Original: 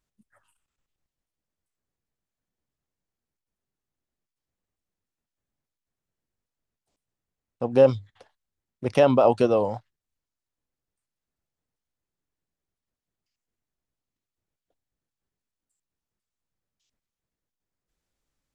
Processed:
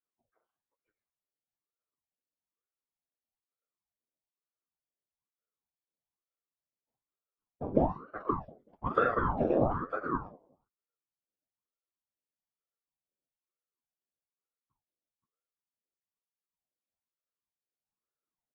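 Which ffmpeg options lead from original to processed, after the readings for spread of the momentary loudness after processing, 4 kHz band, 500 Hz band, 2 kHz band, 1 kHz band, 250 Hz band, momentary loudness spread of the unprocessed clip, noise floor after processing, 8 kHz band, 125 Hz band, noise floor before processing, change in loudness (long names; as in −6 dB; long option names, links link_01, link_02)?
10 LU, below −15 dB, −11.5 dB, −1.0 dB, −3.0 dB, −6.0 dB, 16 LU, below −85 dBFS, can't be measured, −6.0 dB, below −85 dBFS, −10.5 dB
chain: -filter_complex "[0:a]afftfilt=real='re*pow(10,21/40*sin(2*PI*(1.6*log(max(b,1)*sr/1024/100)/log(2)-(-0.53)*(pts-256)/sr)))':imag='im*pow(10,21/40*sin(2*PI*(1.6*log(max(b,1)*sr/1024/100)/log(2)-(-0.53)*(pts-256)/sr)))':win_size=1024:overlap=0.75,acompressor=threshold=-17dB:ratio=12,highpass=230,lowpass=2700,equalizer=frequency=420:width_type=o:width=0.31:gain=13.5,afftfilt=real='hypot(re,im)*cos(2*PI*random(0))':imag='hypot(re,im)*sin(2*PI*random(1))':win_size=512:overlap=0.75,tiltshelf=frequency=1300:gain=5.5,asplit=2[link_01][link_02];[link_02]aecho=0:1:44|76|525:0.531|0.2|0.531[link_03];[link_01][link_03]amix=inputs=2:normalize=0,agate=range=-8dB:threshold=-50dB:ratio=16:detection=peak,asplit=2[link_04][link_05];[link_05]adelay=188,lowpass=frequency=2000:poles=1,volume=-22dB,asplit=2[link_06][link_07];[link_07]adelay=188,lowpass=frequency=2000:poles=1,volume=0.22[link_08];[link_06][link_08]amix=inputs=2:normalize=0[link_09];[link_04][link_09]amix=inputs=2:normalize=0,flanger=delay=8.8:depth=4.5:regen=23:speed=0.11:shape=triangular,aeval=exprs='val(0)*sin(2*PI*510*n/s+510*0.85/1.1*sin(2*PI*1.1*n/s))':channel_layout=same,volume=-3.5dB"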